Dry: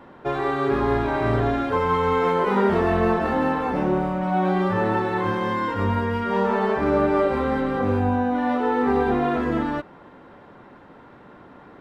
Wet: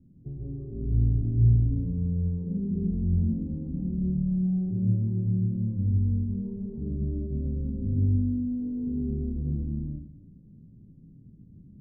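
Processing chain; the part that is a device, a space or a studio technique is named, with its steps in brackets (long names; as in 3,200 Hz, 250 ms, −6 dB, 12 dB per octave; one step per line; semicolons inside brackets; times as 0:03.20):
club heard from the street (brickwall limiter −14 dBFS, peak gain reduction 5.5 dB; low-pass filter 190 Hz 24 dB per octave; convolution reverb RT60 0.60 s, pre-delay 113 ms, DRR −2 dB)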